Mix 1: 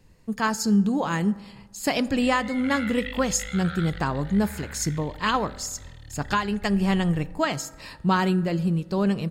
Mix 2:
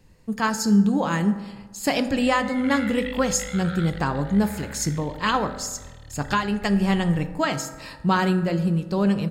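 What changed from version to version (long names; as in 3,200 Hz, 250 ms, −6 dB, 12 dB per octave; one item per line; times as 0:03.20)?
speech: send +8.5 dB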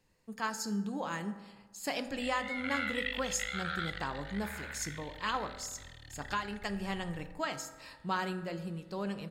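speech −10.5 dB
master: add low-shelf EQ 270 Hz −11 dB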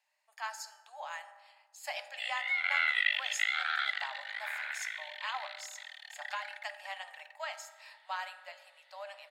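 background +8.5 dB
master: add Chebyshev high-pass with heavy ripple 580 Hz, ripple 6 dB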